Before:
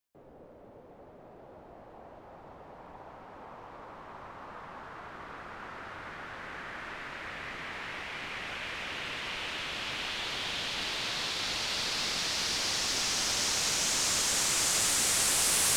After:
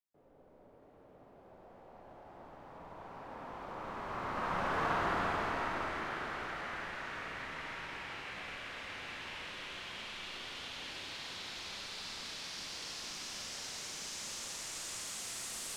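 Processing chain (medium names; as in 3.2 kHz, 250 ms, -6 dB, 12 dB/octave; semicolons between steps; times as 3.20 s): Doppler pass-by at 4.80 s, 10 m/s, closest 4.1 m; Schroeder reverb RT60 3.6 s, combs from 33 ms, DRR -1.5 dB; trim +9 dB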